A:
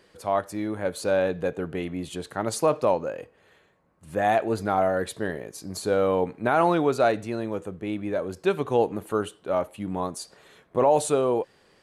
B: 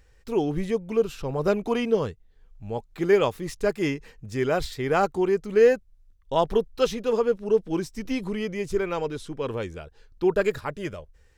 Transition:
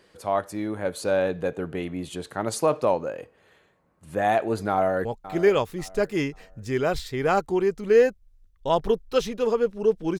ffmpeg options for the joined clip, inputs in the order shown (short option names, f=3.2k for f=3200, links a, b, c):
-filter_complex "[0:a]apad=whole_dur=10.19,atrim=end=10.19,atrim=end=5.052[a];[1:a]atrim=start=2.708:end=7.85[b];[a][b]acrossfade=d=0.004:c1=hsin:c2=hsin,asplit=2[c][d];[d]afade=t=in:st=4.7:d=0.01,afade=t=out:st=5.05:d=0.01,aecho=0:1:540|1080|1620:0.188365|0.0565095|0.0169528[e];[c][e]amix=inputs=2:normalize=0"